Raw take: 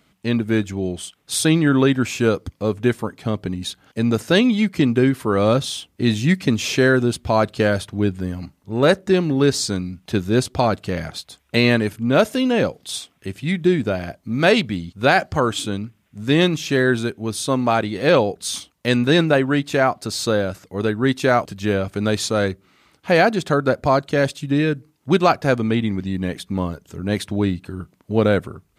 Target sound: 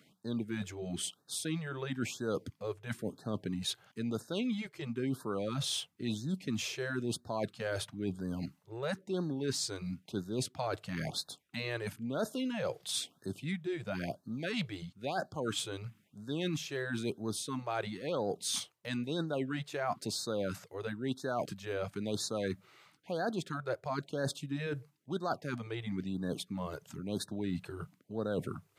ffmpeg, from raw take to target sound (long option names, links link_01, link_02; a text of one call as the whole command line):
ffmpeg -i in.wav -af "areverse,acompressor=threshold=-28dB:ratio=10,areverse,highpass=frequency=110:width=0.5412,highpass=frequency=110:width=1.3066,afftfilt=real='re*(1-between(b*sr/1024,210*pow(2600/210,0.5+0.5*sin(2*PI*1*pts/sr))/1.41,210*pow(2600/210,0.5+0.5*sin(2*PI*1*pts/sr))*1.41))':imag='im*(1-between(b*sr/1024,210*pow(2600/210,0.5+0.5*sin(2*PI*1*pts/sr))/1.41,210*pow(2600/210,0.5+0.5*sin(2*PI*1*pts/sr))*1.41))':win_size=1024:overlap=0.75,volume=-3.5dB" out.wav